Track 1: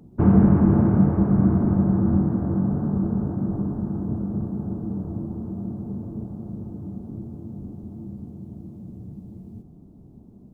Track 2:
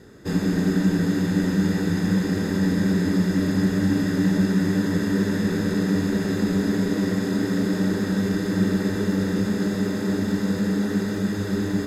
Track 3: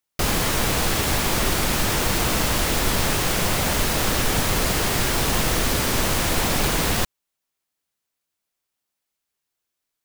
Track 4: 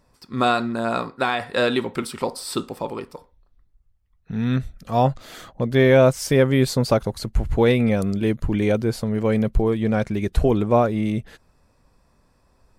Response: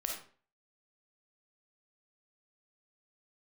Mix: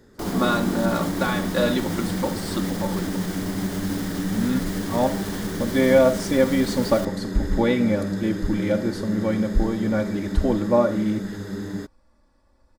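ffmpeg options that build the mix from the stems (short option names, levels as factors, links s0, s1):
-filter_complex "[0:a]highpass=380,volume=0.631[s0];[1:a]volume=0.473[s1];[2:a]alimiter=limit=0.178:level=0:latency=1,volume=0.299[s2];[3:a]highshelf=f=9500:g=-11,aecho=1:1:3.5:0.79,volume=0.422,asplit=2[s3][s4];[s4]volume=0.473[s5];[4:a]atrim=start_sample=2205[s6];[s5][s6]afir=irnorm=-1:irlink=0[s7];[s0][s1][s2][s3][s7]amix=inputs=5:normalize=0,equalizer=f=2600:w=7.9:g=-9"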